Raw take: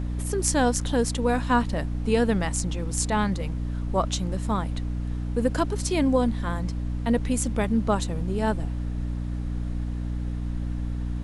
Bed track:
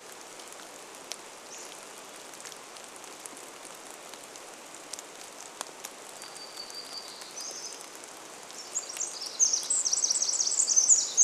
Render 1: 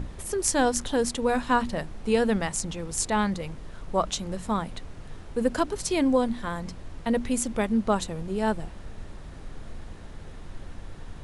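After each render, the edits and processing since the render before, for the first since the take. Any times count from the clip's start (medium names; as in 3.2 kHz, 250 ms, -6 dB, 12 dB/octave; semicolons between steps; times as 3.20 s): hum notches 60/120/180/240/300 Hz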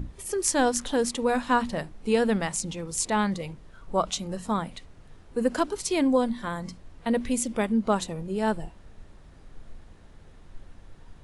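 noise print and reduce 9 dB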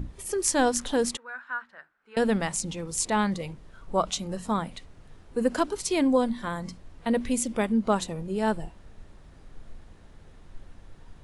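1.17–2.17 s: band-pass filter 1.5 kHz, Q 6.9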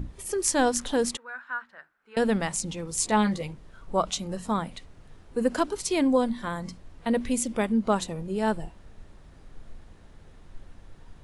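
2.97–3.47 s: doubling 14 ms -6 dB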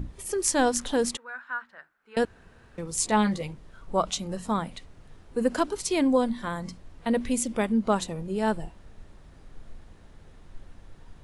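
2.25–2.78 s: room tone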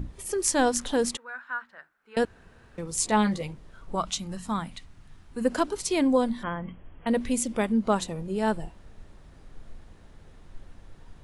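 3.95–5.45 s: peaking EQ 490 Hz -10 dB 1.1 oct; 6.43–7.07 s: brick-wall FIR low-pass 3.4 kHz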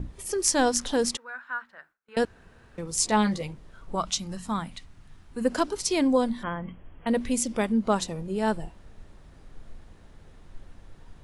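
gate with hold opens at -49 dBFS; dynamic bell 5.3 kHz, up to +6 dB, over -49 dBFS, Q 2.3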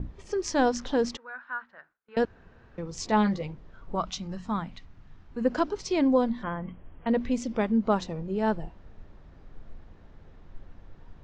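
steep low-pass 6.7 kHz 36 dB/octave; treble shelf 3.3 kHz -11.5 dB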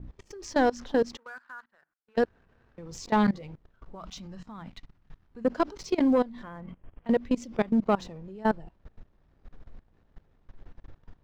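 waveshaping leveller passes 1; level held to a coarse grid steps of 21 dB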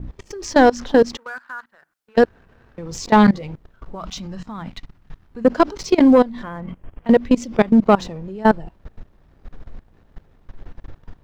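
trim +11 dB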